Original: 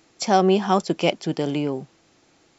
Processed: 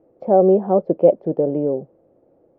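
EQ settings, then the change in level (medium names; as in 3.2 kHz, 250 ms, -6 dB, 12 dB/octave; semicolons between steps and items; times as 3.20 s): resonant low-pass 540 Hz, resonance Q 4.9; distance through air 140 m; -1.0 dB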